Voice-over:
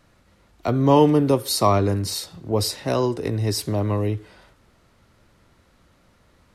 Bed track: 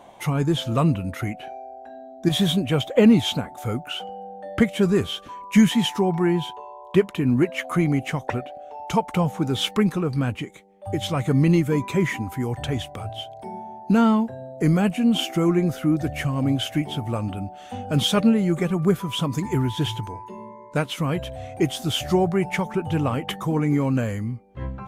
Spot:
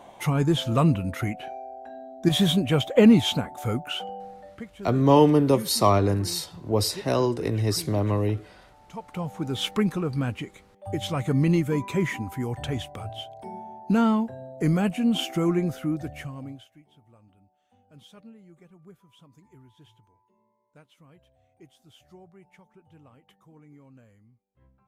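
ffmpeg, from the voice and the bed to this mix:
-filter_complex "[0:a]adelay=4200,volume=0.841[s0];[1:a]volume=6.68,afade=t=out:st=4.13:d=0.45:silence=0.1,afade=t=in:st=8.91:d=0.78:silence=0.141254,afade=t=out:st=15.53:d=1.15:silence=0.0446684[s1];[s0][s1]amix=inputs=2:normalize=0"

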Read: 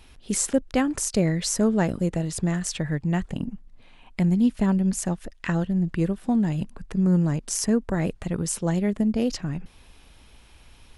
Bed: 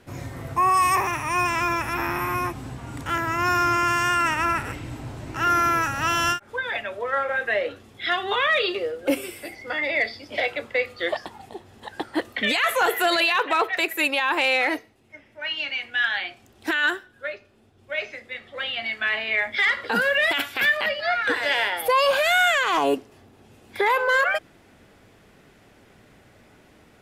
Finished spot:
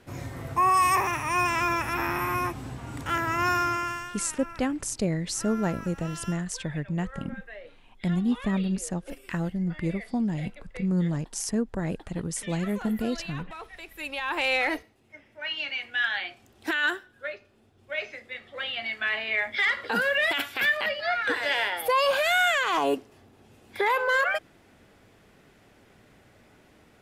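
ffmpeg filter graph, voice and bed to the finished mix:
-filter_complex "[0:a]adelay=3850,volume=0.562[s0];[1:a]volume=5.31,afade=t=out:st=3.42:d=0.7:silence=0.125893,afade=t=in:st=13.92:d=0.62:silence=0.149624[s1];[s0][s1]amix=inputs=2:normalize=0"

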